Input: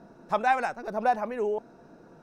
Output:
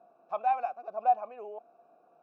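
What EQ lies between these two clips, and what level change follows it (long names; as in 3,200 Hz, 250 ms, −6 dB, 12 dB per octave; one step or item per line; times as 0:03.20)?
formant filter a
+1.0 dB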